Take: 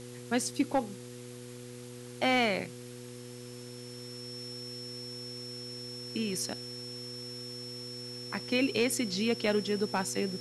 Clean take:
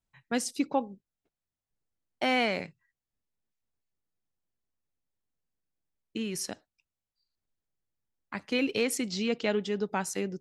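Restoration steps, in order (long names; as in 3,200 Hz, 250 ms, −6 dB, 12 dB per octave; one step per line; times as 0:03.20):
clipped peaks rebuilt −19 dBFS
hum removal 122.4 Hz, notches 4
notch filter 5,400 Hz, Q 30
broadband denoise 30 dB, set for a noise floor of −45 dBFS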